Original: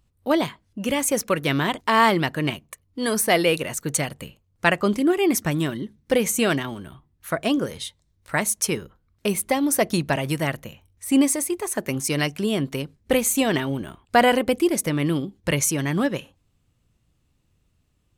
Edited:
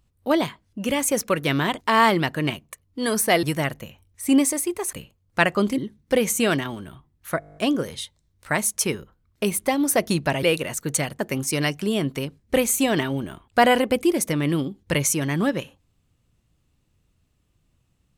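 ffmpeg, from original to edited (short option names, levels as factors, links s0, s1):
-filter_complex "[0:a]asplit=14[s0][s1][s2][s3][s4][s5][s6][s7][s8][s9][s10][s11][s12][s13];[s0]atrim=end=3.432[s14];[s1]atrim=start=10.258:end=11.762[s15];[s2]atrim=start=4.188:end=5.042[s16];[s3]atrim=start=5.768:end=7.412[s17];[s4]atrim=start=7.388:end=7.412[s18];[s5]atrim=start=7.388:end=7.412[s19];[s6]atrim=start=7.388:end=7.412[s20];[s7]atrim=start=7.388:end=7.412[s21];[s8]atrim=start=7.388:end=7.412[s22];[s9]atrim=start=7.388:end=7.412[s23];[s10]atrim=start=7.388:end=7.412[s24];[s11]atrim=start=7.388:end=10.262[s25];[s12]atrim=start=3.428:end=4.192[s26];[s13]atrim=start=11.758[s27];[s14][s15]acrossfade=d=0.004:c1=hsin:c2=hsin[s28];[s28][s16]acrossfade=d=0.004:c1=hsin:c2=hsin[s29];[s29][s17]acrossfade=d=0.004:c1=hsin:c2=hsin[s30];[s30][s18]acrossfade=d=0.004:c1=hsin:c2=hsin[s31];[s31][s19]acrossfade=d=0.004:c1=hsin:c2=hsin[s32];[s32][s20]acrossfade=d=0.004:c1=hsin:c2=hsin[s33];[s33][s21]acrossfade=d=0.004:c1=hsin:c2=hsin[s34];[s34][s22]acrossfade=d=0.004:c1=hsin:c2=hsin[s35];[s35][s23]acrossfade=d=0.004:c1=hsin:c2=hsin[s36];[s36][s24]acrossfade=d=0.004:c1=hsin:c2=hsin[s37];[s37][s25]acrossfade=d=0.004:c1=hsin:c2=hsin[s38];[s38][s26]acrossfade=d=0.004:c1=hsin:c2=hsin[s39];[s39][s27]acrossfade=d=0.004:c1=hsin:c2=hsin"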